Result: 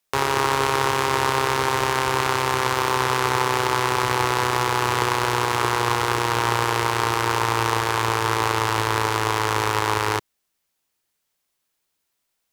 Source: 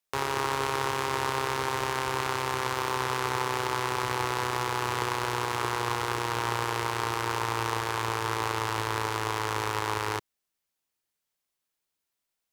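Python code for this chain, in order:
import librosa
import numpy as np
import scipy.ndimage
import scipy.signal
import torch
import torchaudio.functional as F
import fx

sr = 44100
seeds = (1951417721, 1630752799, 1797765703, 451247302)

y = x * 10.0 ** (8.0 / 20.0)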